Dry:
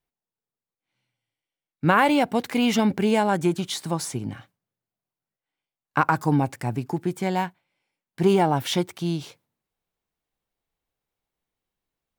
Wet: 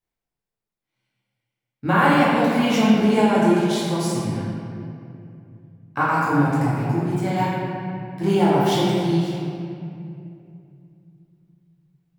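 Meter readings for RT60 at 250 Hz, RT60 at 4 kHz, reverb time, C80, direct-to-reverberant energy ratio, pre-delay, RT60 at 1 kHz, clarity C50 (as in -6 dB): 3.4 s, 1.6 s, 2.6 s, -1.5 dB, -9.0 dB, 9 ms, 2.4 s, -3.5 dB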